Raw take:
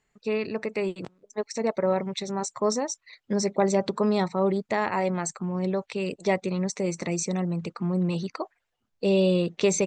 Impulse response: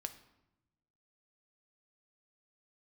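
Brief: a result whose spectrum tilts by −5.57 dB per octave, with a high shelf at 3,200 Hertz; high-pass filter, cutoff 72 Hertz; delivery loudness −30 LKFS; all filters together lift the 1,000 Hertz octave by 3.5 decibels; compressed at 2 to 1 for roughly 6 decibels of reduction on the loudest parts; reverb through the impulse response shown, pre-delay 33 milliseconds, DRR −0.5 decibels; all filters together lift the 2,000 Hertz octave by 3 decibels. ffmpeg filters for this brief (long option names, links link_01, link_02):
-filter_complex "[0:a]highpass=72,equalizer=frequency=1000:width_type=o:gain=4,equalizer=frequency=2000:width_type=o:gain=4,highshelf=frequency=3200:gain=-4,acompressor=threshold=-28dB:ratio=2,asplit=2[link_01][link_02];[1:a]atrim=start_sample=2205,adelay=33[link_03];[link_02][link_03]afir=irnorm=-1:irlink=0,volume=3dB[link_04];[link_01][link_04]amix=inputs=2:normalize=0,volume=-3dB"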